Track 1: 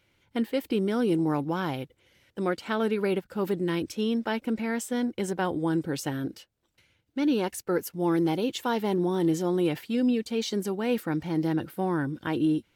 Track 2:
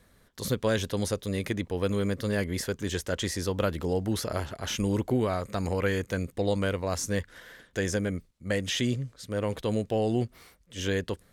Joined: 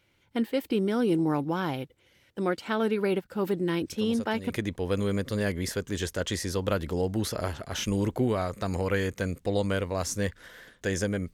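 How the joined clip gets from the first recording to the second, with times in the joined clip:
track 1
3.92 add track 2 from 0.84 s 0.58 s -10.5 dB
4.5 switch to track 2 from 1.42 s

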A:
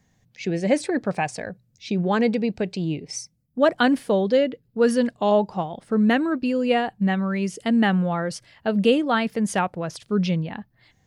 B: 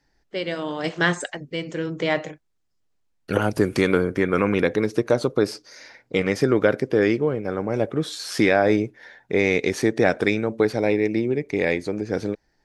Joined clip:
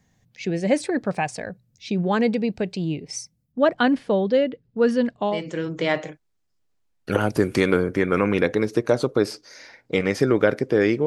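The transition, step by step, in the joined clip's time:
A
3.52–5.42 air absorption 100 m
5.32 switch to B from 1.53 s, crossfade 0.20 s

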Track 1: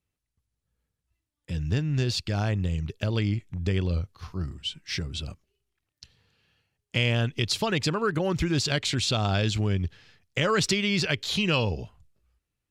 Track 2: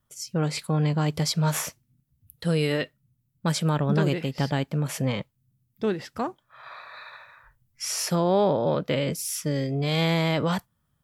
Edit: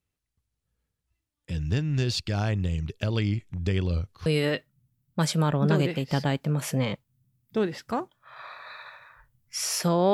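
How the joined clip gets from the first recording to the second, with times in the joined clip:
track 1
4.26 switch to track 2 from 2.53 s

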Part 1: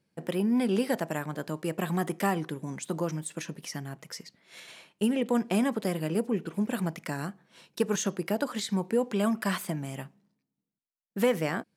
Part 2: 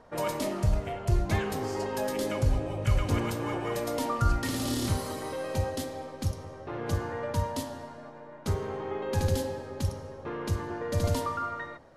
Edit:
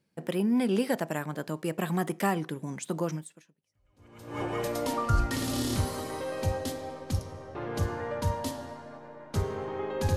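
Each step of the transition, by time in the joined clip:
part 1
3.78 switch to part 2 from 2.9 s, crossfade 1.26 s exponential

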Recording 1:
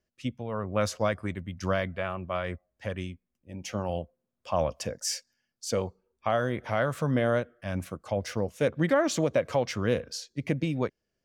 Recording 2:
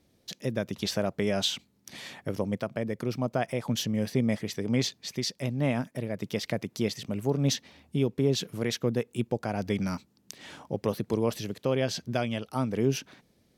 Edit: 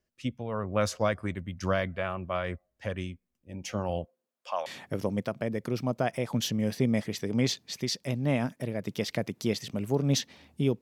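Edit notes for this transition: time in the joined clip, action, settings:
recording 1
4.04–4.66 HPF 210 Hz -> 1000 Hz
4.66 switch to recording 2 from 2.01 s

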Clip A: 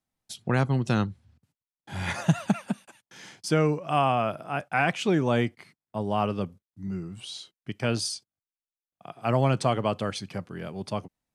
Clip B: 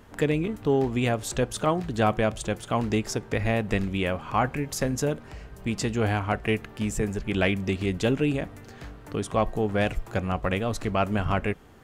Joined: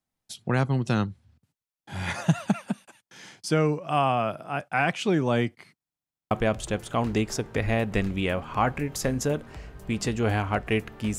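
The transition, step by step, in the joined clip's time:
clip A
5.75 stutter in place 0.07 s, 8 plays
6.31 switch to clip B from 2.08 s

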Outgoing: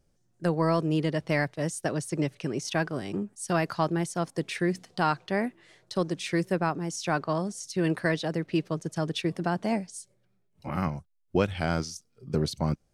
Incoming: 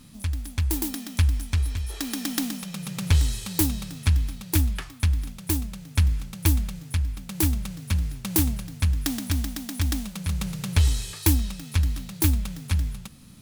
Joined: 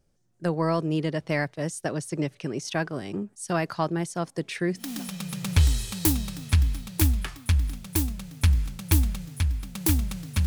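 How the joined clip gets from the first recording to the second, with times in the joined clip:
outgoing
4.9 switch to incoming from 2.44 s, crossfade 0.28 s

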